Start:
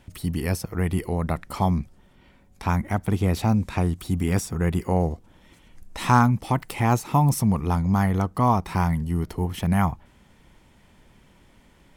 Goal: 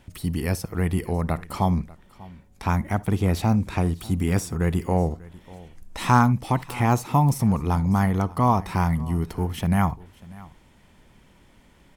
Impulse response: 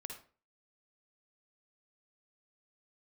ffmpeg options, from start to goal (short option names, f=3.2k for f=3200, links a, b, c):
-filter_complex "[0:a]asplit=2[a][b];[b]aecho=0:1:592:0.0841[c];[a][c]amix=inputs=2:normalize=0,deesser=0.5,asplit=2[d][e];[1:a]atrim=start_sample=2205,atrim=end_sample=3528[f];[e][f]afir=irnorm=-1:irlink=0,volume=-11dB[g];[d][g]amix=inputs=2:normalize=0,volume=-1dB"